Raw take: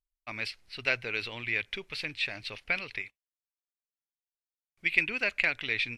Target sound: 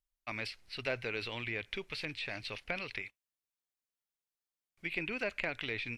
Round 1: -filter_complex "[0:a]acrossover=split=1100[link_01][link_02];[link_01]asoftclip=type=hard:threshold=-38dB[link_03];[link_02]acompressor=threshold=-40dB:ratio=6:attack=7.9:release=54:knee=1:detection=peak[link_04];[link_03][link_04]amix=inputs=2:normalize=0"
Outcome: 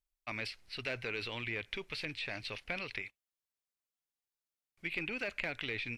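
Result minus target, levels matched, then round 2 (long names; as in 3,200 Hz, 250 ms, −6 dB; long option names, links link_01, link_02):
hard clipping: distortion +21 dB
-filter_complex "[0:a]acrossover=split=1100[link_01][link_02];[link_01]asoftclip=type=hard:threshold=-28.5dB[link_03];[link_02]acompressor=threshold=-40dB:ratio=6:attack=7.9:release=54:knee=1:detection=peak[link_04];[link_03][link_04]amix=inputs=2:normalize=0"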